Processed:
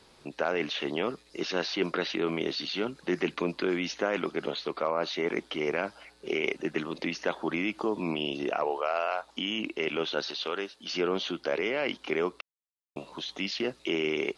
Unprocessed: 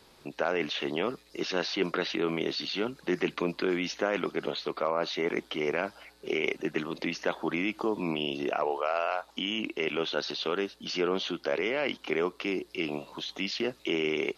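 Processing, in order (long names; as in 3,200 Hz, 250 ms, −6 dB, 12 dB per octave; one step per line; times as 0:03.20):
0:10.30–0:10.91: low-shelf EQ 290 Hz −11.5 dB
0:12.41–0:12.96: silence
AAC 96 kbit/s 24,000 Hz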